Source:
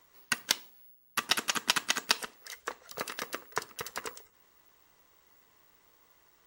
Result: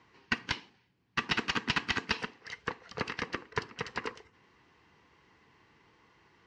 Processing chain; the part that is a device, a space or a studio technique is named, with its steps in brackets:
guitar amplifier (tube saturation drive 24 dB, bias 0.45; bass and treble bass +6 dB, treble +3 dB; loudspeaker in its box 92–4,000 Hz, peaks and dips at 610 Hz −10 dB, 1,300 Hz −5 dB, 3,600 Hz −8 dB)
level +7 dB

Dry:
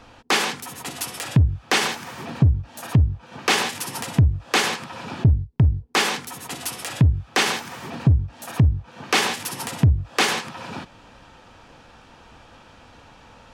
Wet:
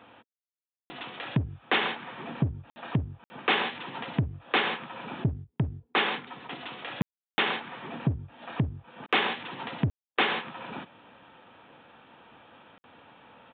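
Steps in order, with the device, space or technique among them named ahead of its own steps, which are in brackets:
call with lost packets (high-pass filter 170 Hz 12 dB per octave; downsampling to 8,000 Hz; dropped packets of 60 ms bursts)
0:09.06–0:10.18: noise gate −38 dBFS, range −58 dB
level −4.5 dB

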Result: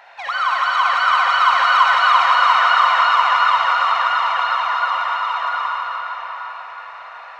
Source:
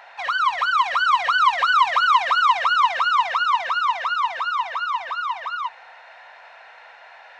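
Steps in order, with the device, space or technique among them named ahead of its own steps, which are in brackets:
cathedral (convolution reverb RT60 5.8 s, pre-delay 45 ms, DRR −4 dB)
level −1 dB

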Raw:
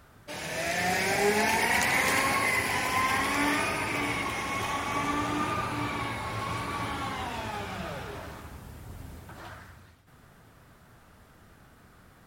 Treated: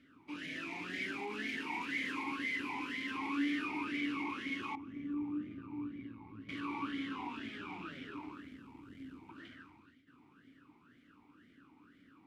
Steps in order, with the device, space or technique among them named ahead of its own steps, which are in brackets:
0:04.75–0:06.49: drawn EQ curve 110 Hz 0 dB, 1,200 Hz −20 dB, 2,600 Hz −21 dB, 4,000 Hz −25 dB
talk box (tube saturation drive 34 dB, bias 0.65; formant filter swept between two vowels i-u 2 Hz)
level +10 dB

